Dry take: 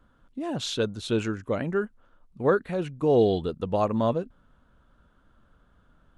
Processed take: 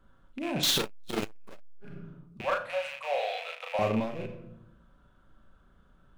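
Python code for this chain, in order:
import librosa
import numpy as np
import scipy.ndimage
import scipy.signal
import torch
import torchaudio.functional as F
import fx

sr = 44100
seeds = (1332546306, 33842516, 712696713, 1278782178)

y = fx.rattle_buzz(x, sr, strikes_db=-41.0, level_db=-26.0)
y = fx.power_curve(y, sr, exponent=0.35, at=(0.63, 1.71))
y = fx.steep_highpass(y, sr, hz=530.0, slope=96, at=(2.41, 3.79))
y = np.clip(y, -10.0 ** (-20.5 / 20.0), 10.0 ** (-20.5 / 20.0))
y = fx.doubler(y, sr, ms=36.0, db=-4.0)
y = fx.room_shoebox(y, sr, seeds[0], volume_m3=2000.0, walls='furnished', distance_m=1.1)
y = fx.transformer_sat(y, sr, knee_hz=250.0)
y = y * librosa.db_to_amplitude(-3.0)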